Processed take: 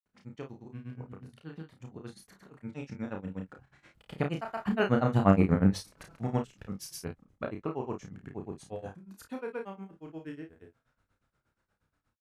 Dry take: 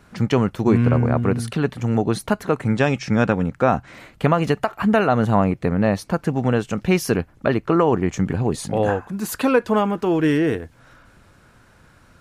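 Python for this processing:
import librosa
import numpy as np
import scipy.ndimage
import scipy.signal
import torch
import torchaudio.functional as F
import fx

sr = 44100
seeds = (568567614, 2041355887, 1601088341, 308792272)

y = fx.doppler_pass(x, sr, speed_mps=11, closest_m=4.3, pass_at_s=5.48)
y = fx.granulator(y, sr, seeds[0], grain_ms=100.0, per_s=8.4, spray_ms=100.0, spread_st=0)
y = fx.room_early_taps(y, sr, ms=(31, 52), db=(-4.0, -12.0))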